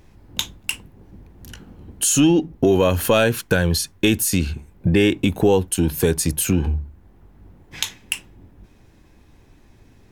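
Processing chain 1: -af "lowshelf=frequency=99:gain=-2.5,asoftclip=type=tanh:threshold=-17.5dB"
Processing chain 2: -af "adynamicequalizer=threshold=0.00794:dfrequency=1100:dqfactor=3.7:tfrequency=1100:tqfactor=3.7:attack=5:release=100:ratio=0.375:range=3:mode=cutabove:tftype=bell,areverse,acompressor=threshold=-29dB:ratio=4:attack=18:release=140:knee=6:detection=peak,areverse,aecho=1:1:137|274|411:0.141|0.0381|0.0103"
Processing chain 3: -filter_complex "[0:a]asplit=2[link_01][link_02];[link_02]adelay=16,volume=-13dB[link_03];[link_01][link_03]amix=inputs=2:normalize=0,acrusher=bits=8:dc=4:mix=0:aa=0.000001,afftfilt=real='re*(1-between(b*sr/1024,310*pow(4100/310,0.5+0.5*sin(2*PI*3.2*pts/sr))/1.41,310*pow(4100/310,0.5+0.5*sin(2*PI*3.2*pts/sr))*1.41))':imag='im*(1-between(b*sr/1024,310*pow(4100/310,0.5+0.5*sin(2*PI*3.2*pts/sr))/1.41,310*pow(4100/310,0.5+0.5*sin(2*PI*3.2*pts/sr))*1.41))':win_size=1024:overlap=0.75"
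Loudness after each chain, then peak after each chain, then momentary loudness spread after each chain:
−24.5, −30.0, −20.0 LKFS; −17.5, −10.0, −2.5 dBFS; 14, 16, 11 LU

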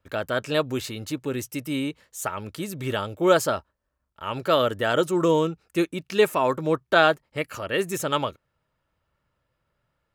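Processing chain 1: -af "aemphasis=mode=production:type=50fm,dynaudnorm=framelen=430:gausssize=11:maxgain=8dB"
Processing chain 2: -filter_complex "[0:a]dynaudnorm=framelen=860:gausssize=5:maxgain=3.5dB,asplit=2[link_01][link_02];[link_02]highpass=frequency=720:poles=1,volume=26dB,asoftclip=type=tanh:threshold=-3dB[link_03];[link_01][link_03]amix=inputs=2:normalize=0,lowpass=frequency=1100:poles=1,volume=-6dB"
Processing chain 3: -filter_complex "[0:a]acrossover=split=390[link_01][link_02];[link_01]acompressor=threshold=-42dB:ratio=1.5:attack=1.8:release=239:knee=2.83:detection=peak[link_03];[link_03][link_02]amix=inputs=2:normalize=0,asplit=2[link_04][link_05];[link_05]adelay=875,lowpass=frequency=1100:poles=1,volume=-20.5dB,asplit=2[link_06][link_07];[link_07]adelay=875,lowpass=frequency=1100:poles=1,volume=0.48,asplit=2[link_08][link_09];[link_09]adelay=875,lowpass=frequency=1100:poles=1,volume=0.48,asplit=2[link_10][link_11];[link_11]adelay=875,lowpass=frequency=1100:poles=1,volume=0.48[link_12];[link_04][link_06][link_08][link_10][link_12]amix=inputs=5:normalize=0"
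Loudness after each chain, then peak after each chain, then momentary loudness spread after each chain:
−21.0, −16.5, −26.0 LKFS; −1.5, −4.5, −5.0 dBFS; 12, 8, 12 LU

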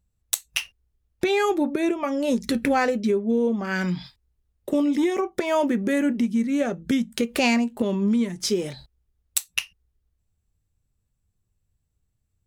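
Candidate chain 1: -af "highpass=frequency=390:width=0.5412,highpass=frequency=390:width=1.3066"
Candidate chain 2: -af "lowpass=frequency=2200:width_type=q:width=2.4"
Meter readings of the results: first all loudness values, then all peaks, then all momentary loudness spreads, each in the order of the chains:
−27.5, −23.0 LKFS; −5.0, −3.0 dBFS; 11, 9 LU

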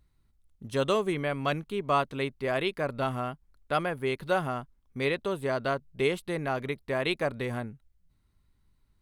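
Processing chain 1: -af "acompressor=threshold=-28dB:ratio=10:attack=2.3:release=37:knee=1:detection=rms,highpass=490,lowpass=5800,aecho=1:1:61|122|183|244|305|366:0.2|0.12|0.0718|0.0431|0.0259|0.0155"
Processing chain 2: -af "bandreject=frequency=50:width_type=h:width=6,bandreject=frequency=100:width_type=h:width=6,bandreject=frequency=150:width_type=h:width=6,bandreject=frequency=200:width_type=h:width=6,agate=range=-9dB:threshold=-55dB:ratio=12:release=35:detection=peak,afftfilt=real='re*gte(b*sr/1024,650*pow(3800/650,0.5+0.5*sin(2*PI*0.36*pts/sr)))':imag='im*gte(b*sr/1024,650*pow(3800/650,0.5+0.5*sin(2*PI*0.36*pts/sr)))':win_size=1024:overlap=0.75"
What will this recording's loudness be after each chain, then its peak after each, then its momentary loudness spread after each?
−37.5, −36.5 LKFS; −21.0, −15.5 dBFS; 5, 17 LU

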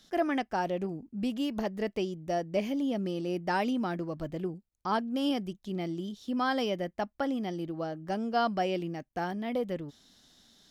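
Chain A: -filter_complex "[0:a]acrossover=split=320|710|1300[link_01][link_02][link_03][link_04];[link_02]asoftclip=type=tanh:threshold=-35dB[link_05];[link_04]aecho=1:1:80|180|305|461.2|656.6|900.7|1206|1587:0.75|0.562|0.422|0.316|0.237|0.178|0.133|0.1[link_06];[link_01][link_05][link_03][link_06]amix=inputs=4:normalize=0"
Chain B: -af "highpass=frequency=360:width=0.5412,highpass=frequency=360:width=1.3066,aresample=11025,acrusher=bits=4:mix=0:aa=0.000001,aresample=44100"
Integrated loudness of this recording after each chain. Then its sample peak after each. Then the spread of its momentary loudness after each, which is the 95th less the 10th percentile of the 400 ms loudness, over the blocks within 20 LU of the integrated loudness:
−33.0, −33.5 LKFS; −17.5, −15.5 dBFS; 7, 14 LU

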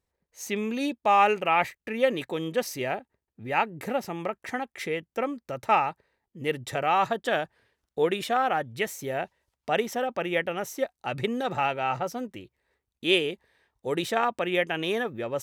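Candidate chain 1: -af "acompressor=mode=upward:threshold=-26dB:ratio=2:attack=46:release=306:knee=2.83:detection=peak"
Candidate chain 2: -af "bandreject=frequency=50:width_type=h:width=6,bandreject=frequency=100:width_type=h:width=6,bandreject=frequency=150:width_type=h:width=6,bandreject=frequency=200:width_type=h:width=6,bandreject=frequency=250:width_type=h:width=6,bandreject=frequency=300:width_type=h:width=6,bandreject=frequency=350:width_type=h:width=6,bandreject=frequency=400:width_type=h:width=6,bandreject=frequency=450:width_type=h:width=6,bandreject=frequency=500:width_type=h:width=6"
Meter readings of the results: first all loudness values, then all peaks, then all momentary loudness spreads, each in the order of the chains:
−27.5, −28.0 LKFS; −5.0, −9.0 dBFS; 10, 10 LU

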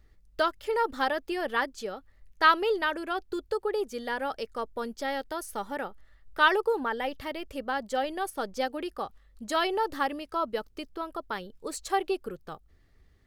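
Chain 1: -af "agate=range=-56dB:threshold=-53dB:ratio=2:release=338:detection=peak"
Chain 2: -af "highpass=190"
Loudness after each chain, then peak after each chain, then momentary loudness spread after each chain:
−30.0, −30.0 LKFS; −9.5, −8.5 dBFS; 15, 15 LU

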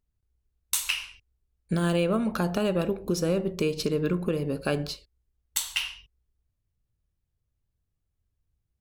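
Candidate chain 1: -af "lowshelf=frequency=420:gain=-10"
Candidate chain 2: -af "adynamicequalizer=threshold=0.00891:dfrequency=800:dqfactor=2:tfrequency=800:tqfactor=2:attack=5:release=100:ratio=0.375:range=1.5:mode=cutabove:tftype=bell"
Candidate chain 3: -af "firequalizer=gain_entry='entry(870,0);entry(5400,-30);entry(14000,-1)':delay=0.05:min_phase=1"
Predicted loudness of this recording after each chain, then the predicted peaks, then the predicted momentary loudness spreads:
−31.5, −28.0, −28.5 LKFS; −8.5, −8.5, −14.5 dBFS; 8, 6, 16 LU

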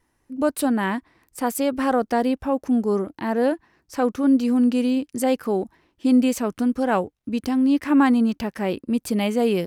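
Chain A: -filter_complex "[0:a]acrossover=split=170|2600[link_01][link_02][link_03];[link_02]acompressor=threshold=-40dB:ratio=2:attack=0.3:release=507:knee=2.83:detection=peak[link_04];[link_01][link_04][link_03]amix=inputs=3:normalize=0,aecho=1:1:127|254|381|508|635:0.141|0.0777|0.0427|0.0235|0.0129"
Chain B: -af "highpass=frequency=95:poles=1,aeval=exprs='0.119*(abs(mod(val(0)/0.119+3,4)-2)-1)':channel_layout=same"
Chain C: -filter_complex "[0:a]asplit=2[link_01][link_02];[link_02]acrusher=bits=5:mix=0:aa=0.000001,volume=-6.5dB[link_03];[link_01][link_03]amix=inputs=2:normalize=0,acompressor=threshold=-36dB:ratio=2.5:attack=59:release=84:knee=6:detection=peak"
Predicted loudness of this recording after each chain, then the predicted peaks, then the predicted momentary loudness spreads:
−31.0, −26.0, −29.5 LKFS; −16.0, −18.5, −12.5 dBFS; 8, 6, 5 LU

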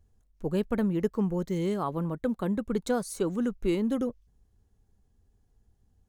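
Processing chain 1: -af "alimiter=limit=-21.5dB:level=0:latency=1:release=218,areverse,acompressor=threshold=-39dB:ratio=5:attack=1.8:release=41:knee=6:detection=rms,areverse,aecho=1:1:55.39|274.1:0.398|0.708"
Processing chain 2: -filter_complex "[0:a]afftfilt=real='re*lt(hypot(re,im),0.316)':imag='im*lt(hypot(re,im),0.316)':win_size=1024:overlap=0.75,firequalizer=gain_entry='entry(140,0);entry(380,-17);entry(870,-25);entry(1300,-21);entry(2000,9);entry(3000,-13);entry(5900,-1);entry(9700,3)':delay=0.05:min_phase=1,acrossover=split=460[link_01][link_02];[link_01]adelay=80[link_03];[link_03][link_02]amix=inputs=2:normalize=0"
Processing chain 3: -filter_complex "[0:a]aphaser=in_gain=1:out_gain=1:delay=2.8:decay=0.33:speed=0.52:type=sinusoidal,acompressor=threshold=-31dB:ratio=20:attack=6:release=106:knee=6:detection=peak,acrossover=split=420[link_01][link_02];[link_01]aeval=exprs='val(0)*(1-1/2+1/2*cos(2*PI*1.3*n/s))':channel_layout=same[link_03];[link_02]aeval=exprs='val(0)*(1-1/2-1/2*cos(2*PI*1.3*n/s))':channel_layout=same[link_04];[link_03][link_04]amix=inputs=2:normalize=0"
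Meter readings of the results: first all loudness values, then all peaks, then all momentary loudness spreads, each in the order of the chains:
−40.5, −42.0, −41.5 LKFS; −27.0, −25.0, −26.5 dBFS; 6, 7, 8 LU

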